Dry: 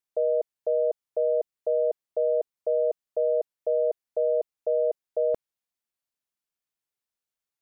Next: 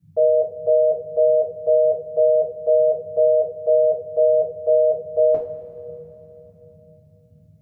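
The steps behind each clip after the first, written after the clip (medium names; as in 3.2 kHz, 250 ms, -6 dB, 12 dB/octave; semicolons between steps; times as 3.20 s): band noise 69–190 Hz -60 dBFS; two-slope reverb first 0.31 s, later 3.4 s, from -18 dB, DRR -5.5 dB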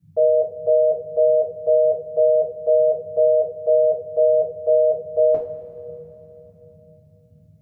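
no audible change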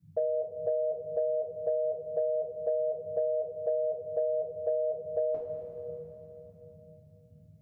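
compression 6:1, threshold -23 dBFS, peak gain reduction 10 dB; trim -4.5 dB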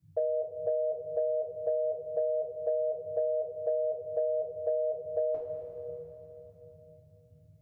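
peaking EQ 200 Hz -15 dB 0.42 oct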